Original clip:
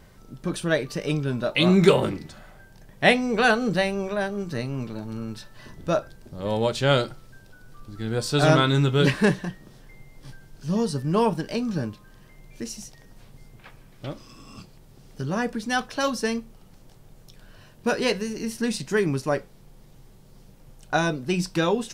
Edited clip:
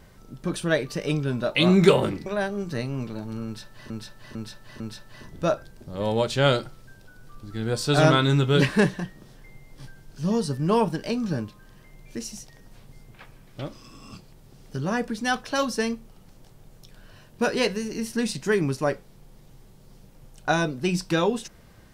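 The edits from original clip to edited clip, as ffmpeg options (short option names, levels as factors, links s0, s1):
-filter_complex "[0:a]asplit=5[s0][s1][s2][s3][s4];[s0]atrim=end=2.262[s5];[s1]atrim=start=4.058:end=5.702[s6];[s2]atrim=start=5.248:end=5.702[s7];[s3]atrim=start=5.248:end=5.702[s8];[s4]atrim=start=5.248[s9];[s5][s6]acrossfade=d=0.004:c1=hsin:c2=hsin[s10];[s10][s7]acrossfade=d=0.004:c1=hsin:c2=hsin[s11];[s11][s8]acrossfade=d=0.004:c1=hsin:c2=hsin[s12];[s12][s9]acrossfade=d=0.004:c1=hsin:c2=hsin"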